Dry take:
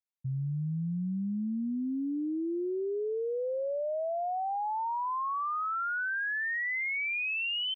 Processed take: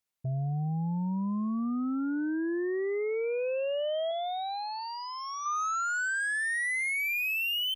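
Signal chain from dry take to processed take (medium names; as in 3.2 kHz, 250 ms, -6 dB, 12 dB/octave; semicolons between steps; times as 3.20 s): Chebyshev shaper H 2 -33 dB, 5 -15 dB, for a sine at -29 dBFS; 4.11–5.46 s: fifteen-band graphic EQ 100 Hz +6 dB, 250 Hz +9 dB, 1 kHz -9 dB; trim +2 dB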